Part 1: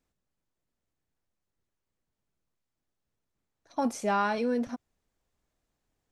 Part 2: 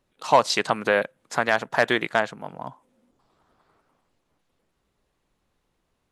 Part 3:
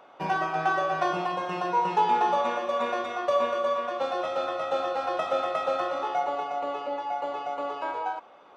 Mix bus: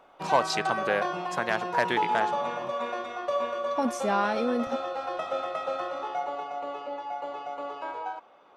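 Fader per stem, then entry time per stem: +0.5, −6.5, −4.0 decibels; 0.00, 0.00, 0.00 seconds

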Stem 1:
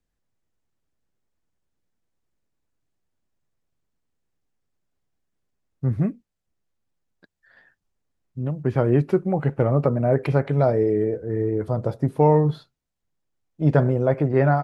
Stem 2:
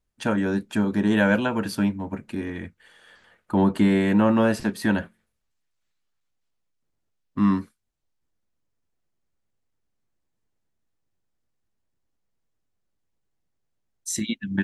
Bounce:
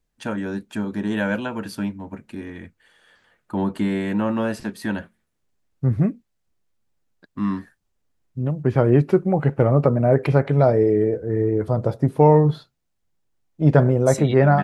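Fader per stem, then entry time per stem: +3.0, −3.5 decibels; 0.00, 0.00 seconds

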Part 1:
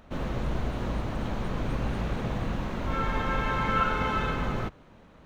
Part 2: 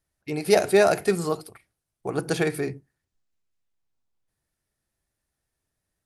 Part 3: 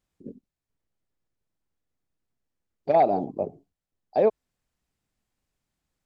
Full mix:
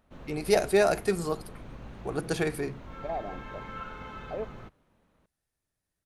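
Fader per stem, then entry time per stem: −14.5, −4.5, −15.0 decibels; 0.00, 0.00, 0.15 seconds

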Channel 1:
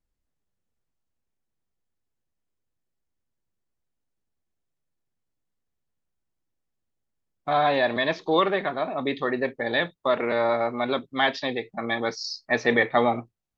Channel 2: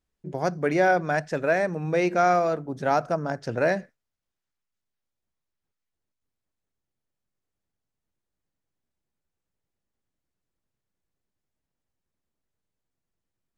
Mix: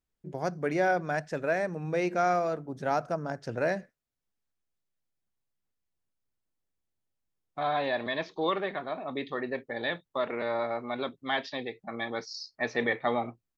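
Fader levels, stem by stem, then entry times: −7.5, −5.5 decibels; 0.10, 0.00 seconds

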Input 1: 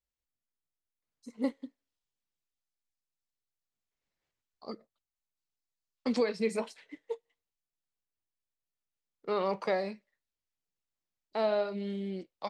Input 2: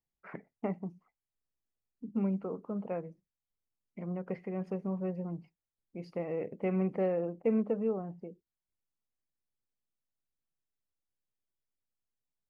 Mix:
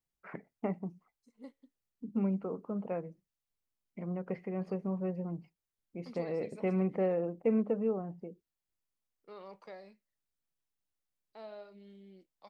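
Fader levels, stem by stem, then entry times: −18.5, 0.0 decibels; 0.00, 0.00 seconds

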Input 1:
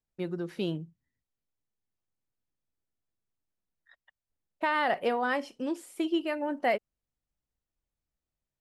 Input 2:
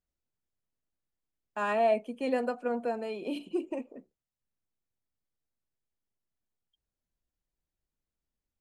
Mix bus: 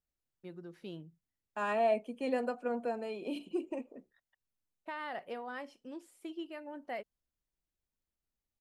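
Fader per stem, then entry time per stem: −13.5, −3.5 decibels; 0.25, 0.00 seconds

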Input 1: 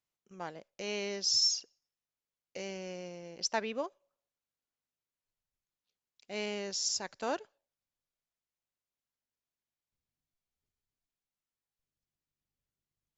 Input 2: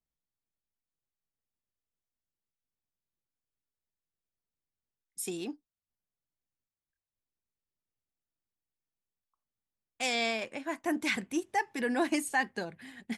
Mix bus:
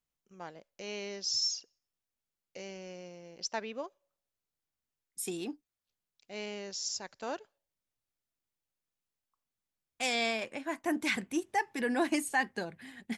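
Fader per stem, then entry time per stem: −3.5, −0.5 decibels; 0.00, 0.00 seconds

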